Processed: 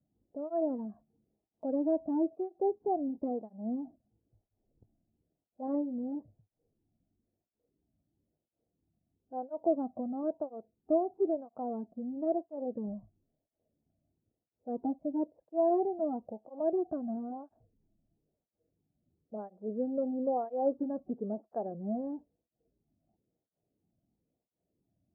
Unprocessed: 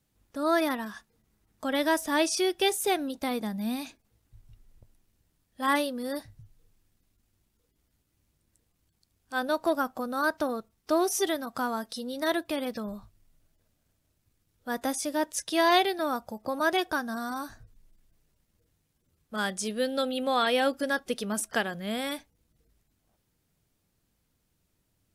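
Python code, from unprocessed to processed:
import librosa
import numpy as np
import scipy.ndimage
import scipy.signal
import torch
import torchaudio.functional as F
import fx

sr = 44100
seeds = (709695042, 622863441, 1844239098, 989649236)

y = scipy.signal.sosfilt(scipy.signal.cheby1(4, 1.0, 720.0, 'lowpass', fs=sr, output='sos'), x)
y = fx.flanger_cancel(y, sr, hz=1.0, depth_ms=2.5)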